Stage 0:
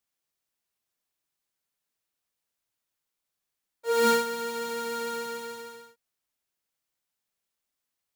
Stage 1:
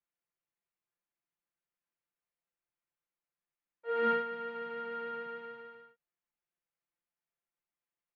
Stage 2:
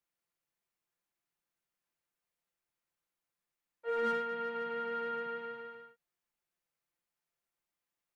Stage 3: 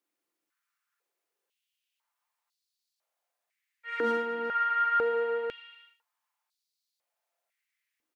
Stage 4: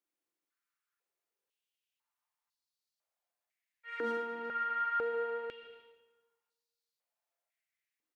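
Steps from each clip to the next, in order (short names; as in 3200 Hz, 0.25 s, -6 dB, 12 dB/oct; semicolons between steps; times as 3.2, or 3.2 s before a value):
inverse Chebyshev low-pass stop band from 9700 Hz, stop band 70 dB; comb 5.8 ms, depth 71%; gain -8 dB
in parallel at -7 dB: hard clip -34.5 dBFS, distortion -6 dB; on the sum: compressor 2:1, threshold -33 dBFS, peak gain reduction 5.5 dB
on a send: early reflections 44 ms -8 dB, 60 ms -10 dB; on the sum: stepped high-pass 2 Hz 300–4300 Hz; gain +2 dB
plate-style reverb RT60 1.3 s, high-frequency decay 0.75×, pre-delay 0.115 s, DRR 13 dB; gain -7 dB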